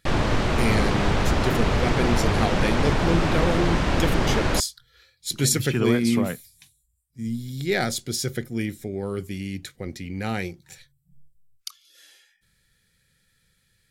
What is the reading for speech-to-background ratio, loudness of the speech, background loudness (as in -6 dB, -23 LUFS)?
-3.5 dB, -27.0 LUFS, -23.5 LUFS